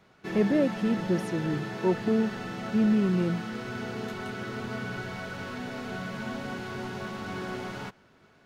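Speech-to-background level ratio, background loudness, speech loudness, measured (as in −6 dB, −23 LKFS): 7.5 dB, −35.5 LKFS, −28.0 LKFS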